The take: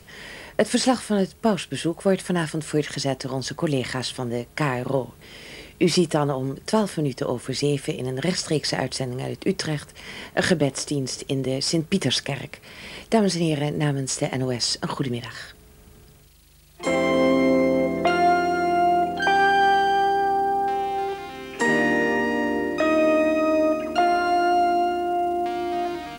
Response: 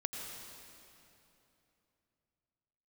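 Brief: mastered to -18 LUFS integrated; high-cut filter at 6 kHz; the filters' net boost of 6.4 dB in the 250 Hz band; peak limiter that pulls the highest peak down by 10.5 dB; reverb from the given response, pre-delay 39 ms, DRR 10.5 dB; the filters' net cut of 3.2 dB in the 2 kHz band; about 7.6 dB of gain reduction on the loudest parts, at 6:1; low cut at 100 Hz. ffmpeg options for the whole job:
-filter_complex "[0:a]highpass=100,lowpass=6000,equalizer=f=250:t=o:g=8.5,equalizer=f=2000:t=o:g=-4,acompressor=threshold=0.126:ratio=6,alimiter=limit=0.15:level=0:latency=1,asplit=2[s0][s1];[1:a]atrim=start_sample=2205,adelay=39[s2];[s1][s2]afir=irnorm=-1:irlink=0,volume=0.251[s3];[s0][s3]amix=inputs=2:normalize=0,volume=2.37"

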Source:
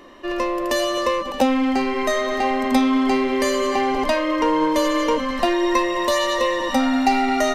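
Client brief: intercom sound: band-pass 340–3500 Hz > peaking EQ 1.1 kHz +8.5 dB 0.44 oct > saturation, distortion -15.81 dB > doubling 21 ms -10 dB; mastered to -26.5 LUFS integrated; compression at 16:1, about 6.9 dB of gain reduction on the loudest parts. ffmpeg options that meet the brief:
-filter_complex "[0:a]acompressor=threshold=0.112:ratio=16,highpass=340,lowpass=3500,equalizer=f=1100:t=o:w=0.44:g=8.5,asoftclip=threshold=0.133,asplit=2[s0][s1];[s1]adelay=21,volume=0.316[s2];[s0][s2]amix=inputs=2:normalize=0,volume=0.75"

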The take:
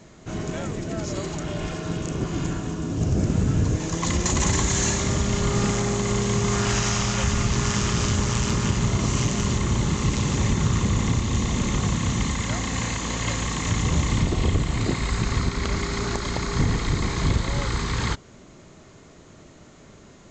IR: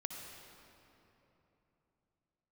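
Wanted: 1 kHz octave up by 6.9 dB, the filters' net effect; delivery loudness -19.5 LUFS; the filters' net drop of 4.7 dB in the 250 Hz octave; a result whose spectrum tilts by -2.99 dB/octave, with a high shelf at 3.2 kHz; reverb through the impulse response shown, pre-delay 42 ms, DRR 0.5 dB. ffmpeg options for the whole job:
-filter_complex "[0:a]equalizer=f=250:t=o:g=-7.5,equalizer=f=1000:t=o:g=7.5,highshelf=f=3200:g=8.5,asplit=2[s0][s1];[1:a]atrim=start_sample=2205,adelay=42[s2];[s1][s2]afir=irnorm=-1:irlink=0,volume=1.06[s3];[s0][s3]amix=inputs=2:normalize=0"

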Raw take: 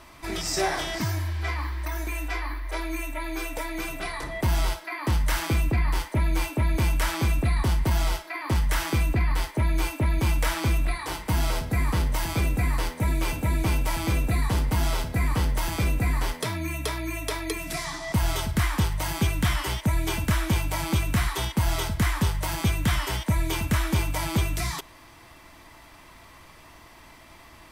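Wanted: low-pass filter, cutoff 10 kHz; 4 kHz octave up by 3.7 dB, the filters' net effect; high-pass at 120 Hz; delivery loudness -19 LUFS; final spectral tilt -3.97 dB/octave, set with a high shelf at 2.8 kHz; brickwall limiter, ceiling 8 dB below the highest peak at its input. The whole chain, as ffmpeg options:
-af "highpass=120,lowpass=10000,highshelf=f=2800:g=-4.5,equalizer=f=4000:t=o:g=8.5,volume=3.98,alimiter=limit=0.398:level=0:latency=1"

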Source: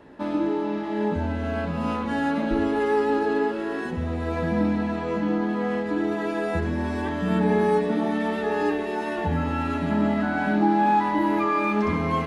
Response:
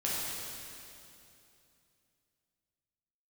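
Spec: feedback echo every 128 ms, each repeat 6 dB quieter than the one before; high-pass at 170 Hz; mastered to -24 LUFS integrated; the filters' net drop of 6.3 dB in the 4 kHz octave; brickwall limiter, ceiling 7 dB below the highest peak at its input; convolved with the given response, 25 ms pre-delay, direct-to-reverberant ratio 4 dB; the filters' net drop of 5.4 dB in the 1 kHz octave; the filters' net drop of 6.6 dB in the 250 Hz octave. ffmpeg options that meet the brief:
-filter_complex "[0:a]highpass=170,equalizer=f=250:t=o:g=-7,equalizer=f=1000:t=o:g=-6,equalizer=f=4000:t=o:g=-8,alimiter=limit=0.075:level=0:latency=1,aecho=1:1:128|256|384|512|640|768:0.501|0.251|0.125|0.0626|0.0313|0.0157,asplit=2[s0][s1];[1:a]atrim=start_sample=2205,adelay=25[s2];[s1][s2]afir=irnorm=-1:irlink=0,volume=0.282[s3];[s0][s3]amix=inputs=2:normalize=0,volume=1.78"

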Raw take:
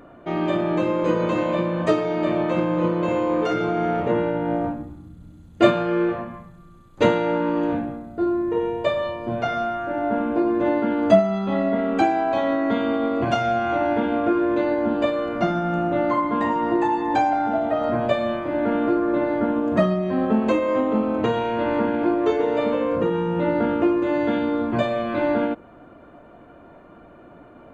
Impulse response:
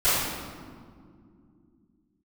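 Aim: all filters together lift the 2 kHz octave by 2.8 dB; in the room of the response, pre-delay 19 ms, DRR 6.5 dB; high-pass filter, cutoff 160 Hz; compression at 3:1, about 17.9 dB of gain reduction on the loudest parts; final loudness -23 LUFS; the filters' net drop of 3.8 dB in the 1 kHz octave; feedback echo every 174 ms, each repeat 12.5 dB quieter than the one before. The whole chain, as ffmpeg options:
-filter_complex "[0:a]highpass=160,equalizer=f=1000:t=o:g=-7,equalizer=f=2000:t=o:g=6,acompressor=threshold=0.0158:ratio=3,aecho=1:1:174|348|522:0.237|0.0569|0.0137,asplit=2[s0][s1];[1:a]atrim=start_sample=2205,adelay=19[s2];[s1][s2]afir=irnorm=-1:irlink=0,volume=0.0668[s3];[s0][s3]amix=inputs=2:normalize=0,volume=3.76"

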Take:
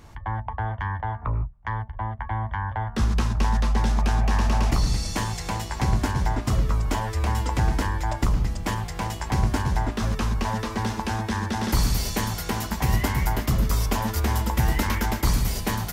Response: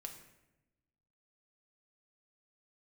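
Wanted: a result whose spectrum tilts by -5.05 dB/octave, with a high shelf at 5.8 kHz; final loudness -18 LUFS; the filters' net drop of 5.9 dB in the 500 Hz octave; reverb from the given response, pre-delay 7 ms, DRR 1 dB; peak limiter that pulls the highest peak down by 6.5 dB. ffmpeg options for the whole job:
-filter_complex "[0:a]equalizer=f=500:t=o:g=-8,highshelf=f=5800:g=-3,alimiter=limit=0.168:level=0:latency=1,asplit=2[s0][s1];[1:a]atrim=start_sample=2205,adelay=7[s2];[s1][s2]afir=irnorm=-1:irlink=0,volume=1.41[s3];[s0][s3]amix=inputs=2:normalize=0,volume=2.82"

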